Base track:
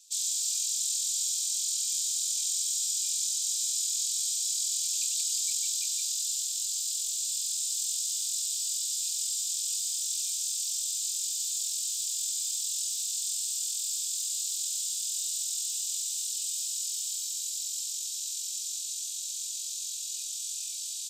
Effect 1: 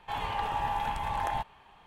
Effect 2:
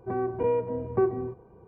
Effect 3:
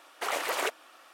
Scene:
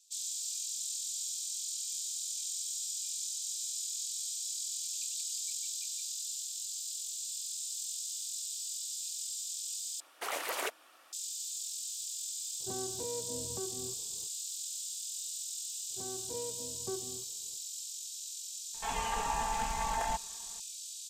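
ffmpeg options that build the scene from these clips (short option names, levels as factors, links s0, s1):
-filter_complex "[2:a]asplit=2[s0][s1];[0:a]volume=0.398[s2];[3:a]highshelf=f=5900:g=7[s3];[s0]alimiter=level_in=1.06:limit=0.0631:level=0:latency=1:release=367,volume=0.944[s4];[1:a]aecho=1:1:4.4:0.95[s5];[s2]asplit=2[s6][s7];[s6]atrim=end=10.004[s8];[s3]atrim=end=1.13,asetpts=PTS-STARTPTS,volume=0.473[s9];[s7]atrim=start=11.126[s10];[s4]atrim=end=1.67,asetpts=PTS-STARTPTS,volume=0.355,afade=t=in:d=0.004:c=hsin,afade=t=out:st=1.666:d=0.004:c=hsin,adelay=12600[s11];[s1]atrim=end=1.67,asetpts=PTS-STARTPTS,volume=0.15,afade=t=in:d=0.004:c=hsin,afade=t=out:st=1.666:d=0.004:c=hsin,adelay=15900[s12];[s5]atrim=end=1.86,asetpts=PTS-STARTPTS,volume=0.596,afade=t=in:d=0.004:c=hsin,afade=t=out:st=1.856:d=0.004:c=hsin,adelay=18740[s13];[s8][s9]acrossfade=d=0.004:c1=hsin:c2=hsin[s14];[s14][s10]acrossfade=d=0.004:c1=hsin:c2=hsin[s15];[s15][s11][s12][s13]amix=inputs=4:normalize=0"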